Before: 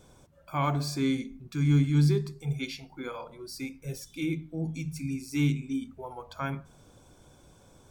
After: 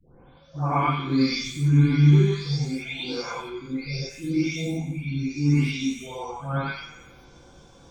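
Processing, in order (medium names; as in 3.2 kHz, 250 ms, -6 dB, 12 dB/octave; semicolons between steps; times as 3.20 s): delay that grows with frequency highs late, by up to 613 ms; resonant high shelf 7.5 kHz -14 dB, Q 1.5; on a send: band-passed feedback delay 89 ms, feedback 66%, band-pass 1.9 kHz, level -9 dB; on the sum: gated-style reverb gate 140 ms rising, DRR -7.5 dB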